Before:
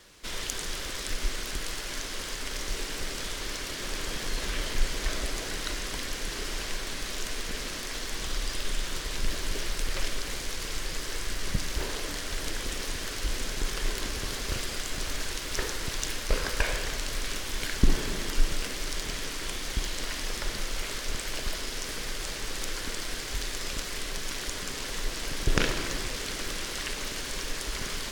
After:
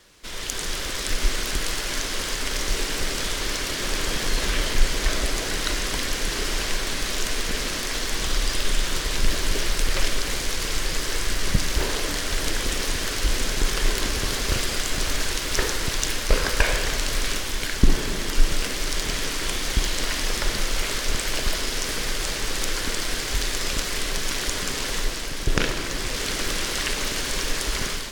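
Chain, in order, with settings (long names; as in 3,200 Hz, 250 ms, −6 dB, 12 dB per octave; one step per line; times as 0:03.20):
automatic gain control gain up to 8 dB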